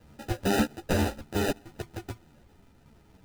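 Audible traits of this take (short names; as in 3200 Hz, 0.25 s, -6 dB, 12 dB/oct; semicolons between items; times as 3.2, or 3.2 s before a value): phasing stages 8, 0.64 Hz, lowest notch 740–1500 Hz; aliases and images of a low sample rate 1100 Hz, jitter 0%; a shimmering, thickened sound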